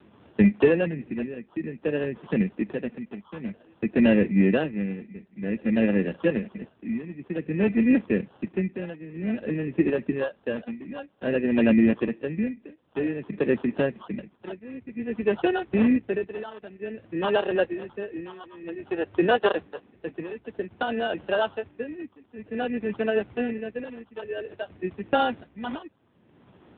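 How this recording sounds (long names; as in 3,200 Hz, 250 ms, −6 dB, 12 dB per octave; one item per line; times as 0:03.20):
phaser sweep stages 8, 0.53 Hz, lowest notch 720–2,100 Hz
tremolo triangle 0.53 Hz, depth 80%
aliases and images of a low sample rate 2,200 Hz, jitter 0%
AMR narrowband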